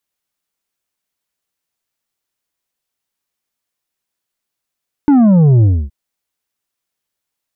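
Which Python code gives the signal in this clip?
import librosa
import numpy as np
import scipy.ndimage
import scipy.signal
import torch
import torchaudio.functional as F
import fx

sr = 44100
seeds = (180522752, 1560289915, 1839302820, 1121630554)

y = fx.sub_drop(sr, level_db=-6.5, start_hz=300.0, length_s=0.82, drive_db=6.5, fade_s=0.27, end_hz=65.0)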